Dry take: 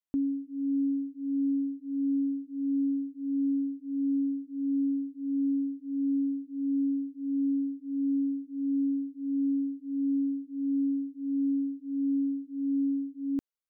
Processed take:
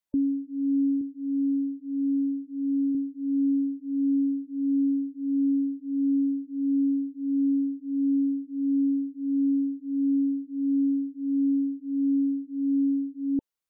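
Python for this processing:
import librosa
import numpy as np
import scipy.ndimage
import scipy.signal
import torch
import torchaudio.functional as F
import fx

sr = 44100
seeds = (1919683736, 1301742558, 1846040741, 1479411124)

y = fx.spec_gate(x, sr, threshold_db=-30, keep='strong')
y = fx.highpass(y, sr, hz=180.0, slope=6, at=(1.01, 2.95))
y = y * 10.0 ** (4.0 / 20.0)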